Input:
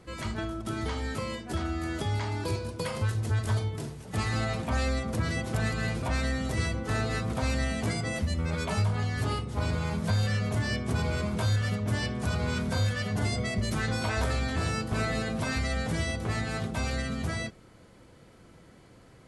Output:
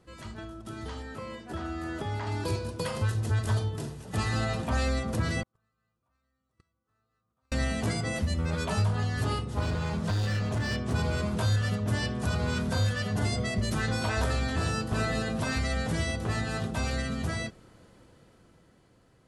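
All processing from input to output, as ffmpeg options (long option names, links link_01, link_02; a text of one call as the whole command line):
ffmpeg -i in.wav -filter_complex "[0:a]asettb=1/sr,asplit=3[link_01][link_02][link_03];[link_01]atrim=end=1.024[link_04];[link_02]atrim=start=1.02:end=2.27,asetpts=PTS-STARTPTS,afade=type=in:duration=0.004:curve=qsin,afade=type=out:start_time=1.246:duration=0.004:curve=qsin,acrossover=split=2500[link_05][link_06];[link_06]acompressor=threshold=-51dB:ratio=4:attack=1:release=60[link_07];[link_05][link_07]amix=inputs=2:normalize=0,lowshelf=frequency=190:gain=-6[link_08];[link_03]atrim=start=2.266[link_09];[link_04][link_08]acrossfade=duration=0.004:curve1=hsin:curve2=qsin[link_10];[link_10][link_09]acrossfade=duration=0.004:curve1=qsin:curve2=hsin,asettb=1/sr,asplit=3[link_11][link_12][link_13];[link_11]atrim=end=5.434[link_14];[link_12]atrim=start=5.43:end=7.52,asetpts=PTS-STARTPTS,afade=type=in:duration=0.004:curve=qsin,afade=type=out:start_time=2.086:duration=0.004:curve=qsin,agate=range=-51dB:threshold=-21dB:ratio=16:release=100:detection=peak,equalizer=frequency=1200:width=4.5:gain=14[link_15];[link_13]atrim=start=7.516[link_16];[link_14][link_15]acrossfade=duration=0.004:curve1=hsin:curve2=qsin[link_17];[link_17][link_16]acrossfade=duration=0.004:curve1=qsin:curve2=hsin,asettb=1/sr,asplit=3[link_18][link_19][link_20];[link_18]atrim=end=9.614[link_21];[link_19]atrim=start=9.61:end=10.92,asetpts=PTS-STARTPTS,afade=type=in:duration=0.004:curve=qsin,afade=type=out:start_time=1.306:duration=0.004:curve=qsin,lowpass=8200,volume=25.5dB,asoftclip=hard,volume=-25.5dB[link_22];[link_20]atrim=start=10.916[link_23];[link_21][link_22]acrossfade=duration=0.004:curve1=hsin:curve2=qsin[link_24];[link_24][link_23]acrossfade=duration=0.004:curve1=qsin:curve2=hsin,bandreject=frequency=2200:width=12,dynaudnorm=framelen=210:gausssize=13:maxgain=8.5dB,volume=-8dB" out.wav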